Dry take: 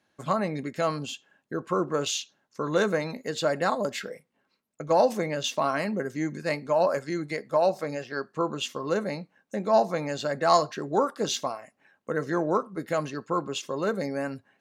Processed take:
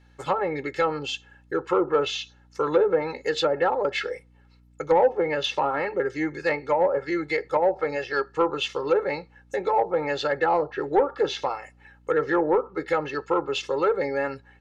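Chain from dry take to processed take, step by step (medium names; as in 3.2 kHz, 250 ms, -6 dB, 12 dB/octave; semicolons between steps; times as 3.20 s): low-pass that closes with the level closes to 680 Hz, closed at -20 dBFS; comb 2.3 ms, depth 100%; overdrive pedal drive 11 dB, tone 4.3 kHz, clips at -9 dBFS; hum 60 Hz, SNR 31 dB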